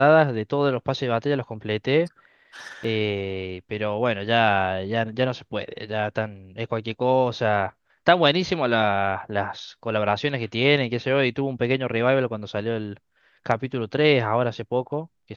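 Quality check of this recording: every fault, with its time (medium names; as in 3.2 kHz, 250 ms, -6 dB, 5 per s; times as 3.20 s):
2.84 s: dropout 4.3 ms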